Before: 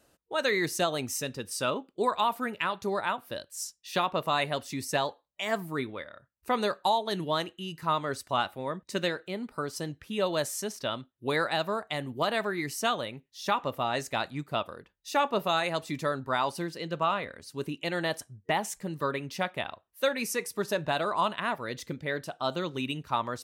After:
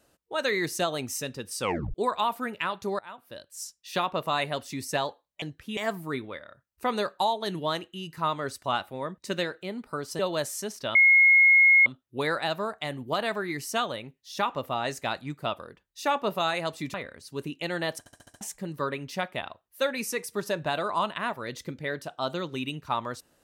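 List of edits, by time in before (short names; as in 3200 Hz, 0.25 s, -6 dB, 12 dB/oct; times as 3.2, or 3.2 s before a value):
1.61 tape stop 0.33 s
2.99–3.79 fade in, from -20.5 dB
9.84–10.19 move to 5.42
10.95 add tone 2160 Hz -14 dBFS 0.91 s
16.03–17.16 cut
18.21 stutter in place 0.07 s, 6 plays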